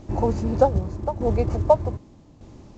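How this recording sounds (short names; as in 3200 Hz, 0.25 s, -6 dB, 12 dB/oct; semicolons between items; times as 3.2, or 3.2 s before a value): a quantiser's noise floor 10-bit, dither triangular; tremolo saw down 0.83 Hz, depth 65%; µ-law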